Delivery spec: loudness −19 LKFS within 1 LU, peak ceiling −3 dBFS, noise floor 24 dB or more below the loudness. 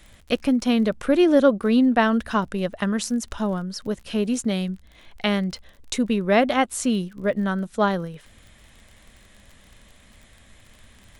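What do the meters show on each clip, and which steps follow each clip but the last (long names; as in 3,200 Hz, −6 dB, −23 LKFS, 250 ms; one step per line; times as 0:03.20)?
crackle rate 34 per second; integrated loudness −22.5 LKFS; sample peak −5.0 dBFS; target loudness −19.0 LKFS
→ click removal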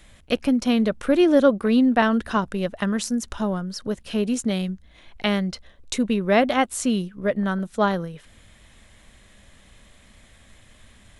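crackle rate 0 per second; integrated loudness −22.5 LKFS; sample peak −5.0 dBFS; target loudness −19.0 LKFS
→ level +3.5 dB
brickwall limiter −3 dBFS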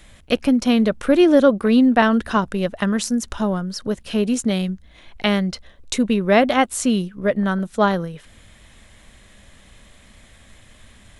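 integrated loudness −19.0 LKFS; sample peak −3.0 dBFS; background noise floor −50 dBFS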